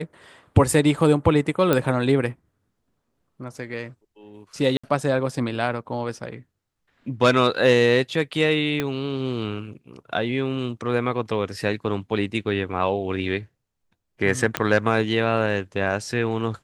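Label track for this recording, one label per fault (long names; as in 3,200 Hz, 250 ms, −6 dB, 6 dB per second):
1.730000	1.730000	click −6 dBFS
4.770000	4.830000	drop-out 65 ms
8.800000	8.800000	click −10 dBFS
14.570000	14.570000	click −6 dBFS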